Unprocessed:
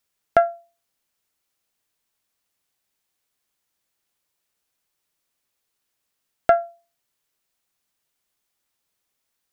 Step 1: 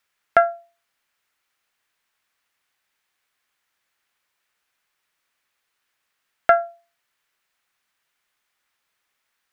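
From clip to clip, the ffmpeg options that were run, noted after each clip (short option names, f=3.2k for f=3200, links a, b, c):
-filter_complex "[0:a]equalizer=f=1.7k:t=o:w=2.3:g=13,asplit=2[a][b];[b]alimiter=limit=-6.5dB:level=0:latency=1:release=110,volume=-0.5dB[c];[a][c]amix=inputs=2:normalize=0,volume=-8.5dB"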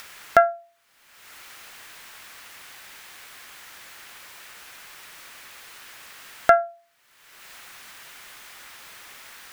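-af "acompressor=mode=upward:threshold=-20dB:ratio=2.5"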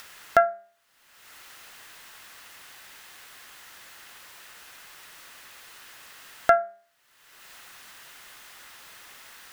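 -af "bandreject=f=2.3k:w=17,bandreject=f=202:t=h:w=4,bandreject=f=404:t=h:w=4,bandreject=f=606:t=h:w=4,bandreject=f=808:t=h:w=4,bandreject=f=1.01k:t=h:w=4,bandreject=f=1.212k:t=h:w=4,bandreject=f=1.414k:t=h:w=4,bandreject=f=1.616k:t=h:w=4,bandreject=f=1.818k:t=h:w=4,bandreject=f=2.02k:t=h:w=4,bandreject=f=2.222k:t=h:w=4,volume=-3dB"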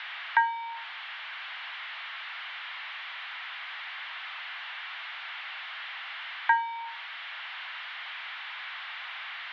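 -af "aeval=exprs='val(0)+0.5*0.0562*sgn(val(0))':c=same,highpass=f=510:t=q:w=0.5412,highpass=f=510:t=q:w=1.307,lowpass=f=3.3k:t=q:w=0.5176,lowpass=f=3.3k:t=q:w=0.7071,lowpass=f=3.3k:t=q:w=1.932,afreqshift=240,volume=-5.5dB"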